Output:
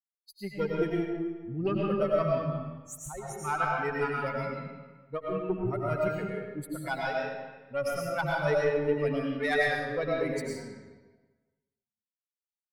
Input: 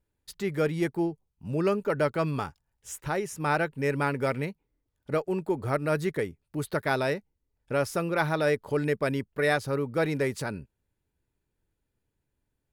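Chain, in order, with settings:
spectral dynamics exaggerated over time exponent 3
harmonic generator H 4 −20 dB, 6 −31 dB, 8 −38 dB, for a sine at −17.5 dBFS
comb and all-pass reverb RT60 1.3 s, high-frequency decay 0.8×, pre-delay 65 ms, DRR −3.5 dB

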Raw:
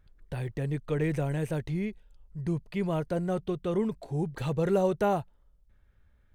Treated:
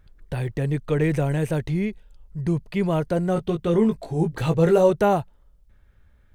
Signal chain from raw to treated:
0:03.34–0:04.90: double-tracking delay 18 ms −5 dB
level +7 dB

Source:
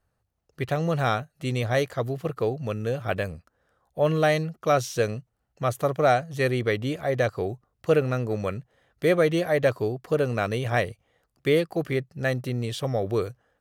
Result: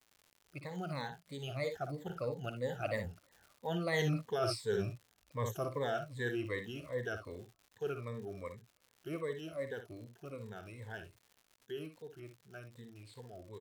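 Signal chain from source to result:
rippled gain that drifts along the octave scale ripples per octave 1, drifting −2.8 Hz, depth 21 dB
source passing by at 0:04.00, 29 m/s, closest 2.8 metres
ambience of single reflections 57 ms −9.5 dB, 74 ms −16 dB
reversed playback
downward compressor 8 to 1, threshold −42 dBFS, peak gain reduction 24.5 dB
reversed playback
surface crackle 160 per second −61 dBFS
level +10.5 dB

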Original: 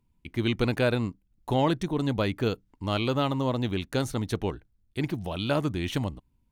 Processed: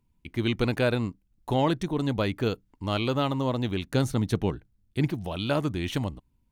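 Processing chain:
0:03.86–0:05.10: parametric band 160 Hz +6 dB 1.6 octaves

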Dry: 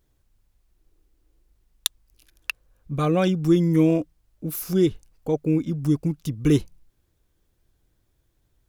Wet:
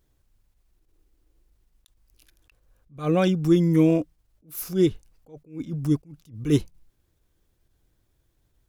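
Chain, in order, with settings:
level that may rise only so fast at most 180 dB per second

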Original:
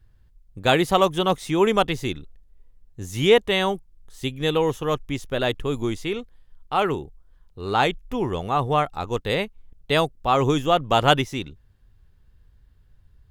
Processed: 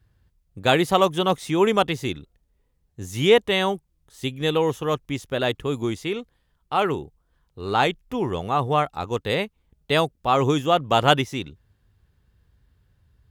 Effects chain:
high-pass filter 65 Hz 12 dB per octave

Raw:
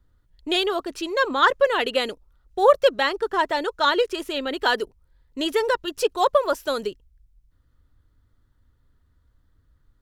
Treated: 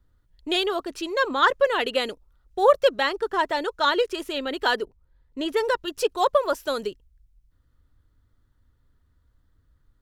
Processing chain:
0:04.76–0:05.57: high-shelf EQ 3,200 Hz −9 dB
level −1.5 dB

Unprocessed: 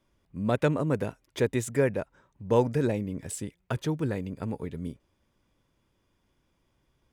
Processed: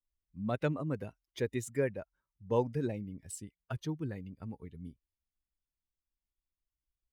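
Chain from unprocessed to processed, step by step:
spectral dynamics exaggerated over time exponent 1.5
level −5.5 dB

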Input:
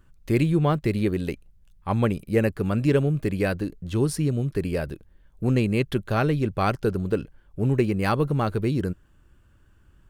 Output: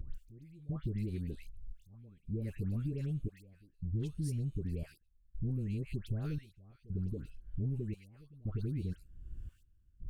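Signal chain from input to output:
upward compression, threshold −27 dBFS
gate pattern "x...xxxxx" 87 BPM −24 dB
downward compressor, threshold −23 dBFS, peak gain reduction 8 dB
guitar amp tone stack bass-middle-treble 10-0-1
all-pass dispersion highs, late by 149 ms, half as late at 1,300 Hz
level +6 dB

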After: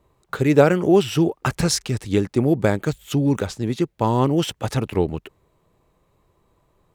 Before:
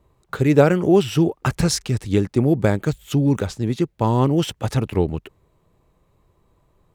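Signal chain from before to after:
low-shelf EQ 190 Hz −5.5 dB
level +1 dB

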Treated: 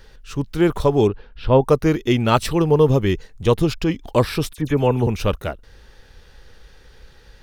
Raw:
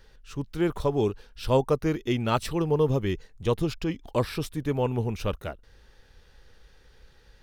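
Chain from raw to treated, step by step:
0:01.07–0:01.62: high-frequency loss of the air 340 metres
0:04.53–0:05.07: all-pass dispersion lows, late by 49 ms, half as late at 2,900 Hz
level +8.5 dB

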